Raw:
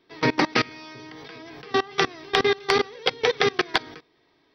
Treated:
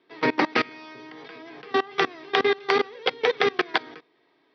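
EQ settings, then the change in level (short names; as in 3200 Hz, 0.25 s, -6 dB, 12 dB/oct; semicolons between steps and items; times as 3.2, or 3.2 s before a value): BPF 220–3500 Hz; 0.0 dB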